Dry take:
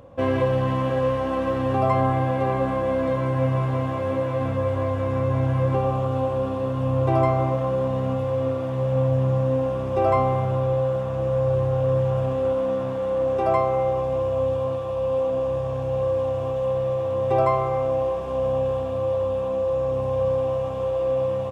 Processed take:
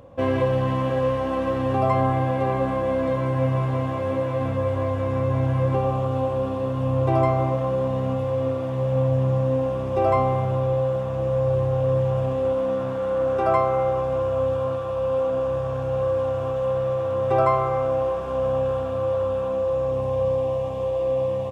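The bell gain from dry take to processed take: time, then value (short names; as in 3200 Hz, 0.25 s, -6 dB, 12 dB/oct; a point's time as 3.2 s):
bell 1400 Hz 0.39 oct
12.46 s -1.5 dB
13.25 s +9.5 dB
19.34 s +9.5 dB
20.1 s -1.5 dB
20.45 s -8 dB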